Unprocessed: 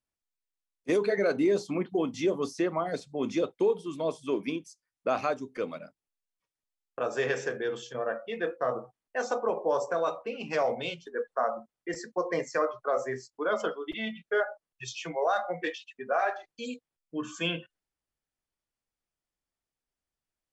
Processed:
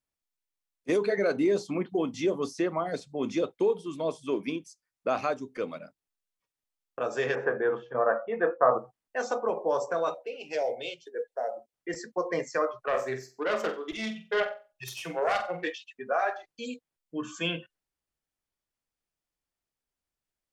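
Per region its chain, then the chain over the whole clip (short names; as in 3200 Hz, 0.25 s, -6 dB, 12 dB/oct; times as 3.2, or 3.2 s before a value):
7.35–8.78 LPF 1400 Hz + bell 1100 Hz +11.5 dB 2.2 oct + mismatched tape noise reduction decoder only
10.14–11.73 low shelf 140 Hz -10 dB + short-mantissa float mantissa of 8-bit + fixed phaser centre 480 Hz, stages 4
12.85–15.64 self-modulated delay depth 0.16 ms + de-hum 353.2 Hz, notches 2 + flutter echo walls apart 7.9 m, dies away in 0.31 s
whole clip: dry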